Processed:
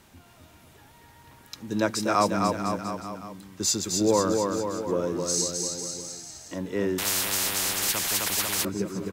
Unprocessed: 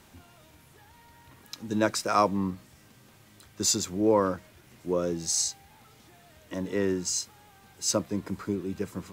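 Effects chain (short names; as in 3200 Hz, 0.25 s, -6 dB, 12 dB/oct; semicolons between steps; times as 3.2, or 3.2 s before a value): bouncing-ball echo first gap 0.26 s, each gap 0.9×, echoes 5; 6.98–8.65 spectral compressor 10:1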